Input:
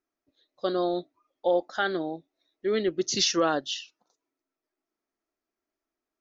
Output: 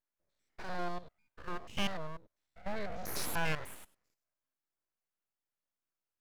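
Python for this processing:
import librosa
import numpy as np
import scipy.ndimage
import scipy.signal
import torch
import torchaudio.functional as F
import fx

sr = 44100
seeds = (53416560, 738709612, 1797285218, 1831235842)

y = fx.spec_steps(x, sr, hold_ms=100)
y = fx.fixed_phaser(y, sr, hz=1300.0, stages=4)
y = np.abs(y)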